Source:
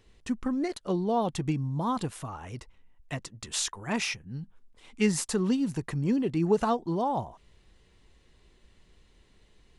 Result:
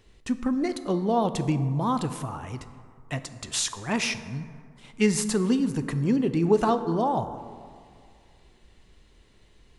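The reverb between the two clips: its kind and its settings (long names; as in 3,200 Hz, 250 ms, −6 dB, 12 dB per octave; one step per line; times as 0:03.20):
dense smooth reverb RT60 2.2 s, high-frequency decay 0.4×, DRR 10 dB
level +3 dB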